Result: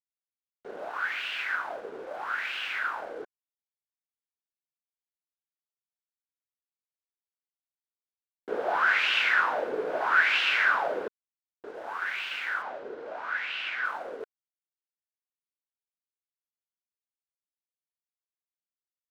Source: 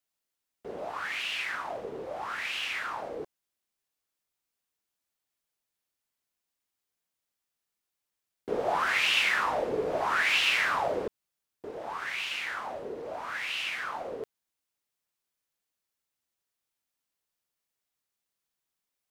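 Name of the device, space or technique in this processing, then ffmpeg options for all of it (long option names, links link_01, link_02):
pocket radio on a weak battery: -filter_complex "[0:a]highpass=290,lowpass=4000,aeval=exprs='sgn(val(0))*max(abs(val(0))-0.00158,0)':channel_layout=same,equalizer=frequency=1500:width_type=o:width=0.28:gain=10.5,asettb=1/sr,asplit=3[link_01][link_02][link_03];[link_01]atrim=end=12.624[link_04];[link_02]atrim=start=12.62:end=13.85,asetpts=PTS-STARTPTS,afade=type=in:duration=0.004:curve=qsin,afade=type=out:start_time=1.226:duration=0.004:curve=qsin,lowpass=5200[link_05];[link_03]atrim=start=13.846[link_06];[link_04][link_05]acrossfade=duration=0.004:curve1=hsin:curve2=qsin[link_07];[link_07][link_06]acrossfade=duration=0.004:curve1=qsin:curve2=hsin"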